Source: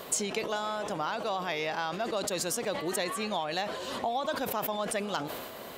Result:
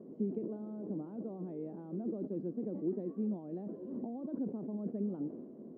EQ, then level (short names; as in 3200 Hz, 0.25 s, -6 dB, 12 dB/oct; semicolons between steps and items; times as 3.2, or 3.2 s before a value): Butterworth band-pass 270 Hz, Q 1.4; air absorption 99 m; low shelf 290 Hz +11.5 dB; -3.0 dB